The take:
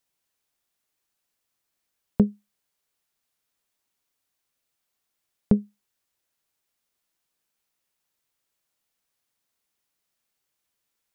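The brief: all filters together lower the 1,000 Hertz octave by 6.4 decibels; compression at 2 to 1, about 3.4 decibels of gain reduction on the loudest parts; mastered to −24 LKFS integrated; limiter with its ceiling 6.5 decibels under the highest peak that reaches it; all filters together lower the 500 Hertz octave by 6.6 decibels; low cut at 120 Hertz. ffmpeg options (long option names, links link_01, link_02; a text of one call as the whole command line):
ffmpeg -i in.wav -af "highpass=120,equalizer=frequency=500:width_type=o:gain=-7.5,equalizer=frequency=1000:width_type=o:gain=-5.5,acompressor=threshold=-21dB:ratio=2,volume=11.5dB,alimiter=limit=-7dB:level=0:latency=1" out.wav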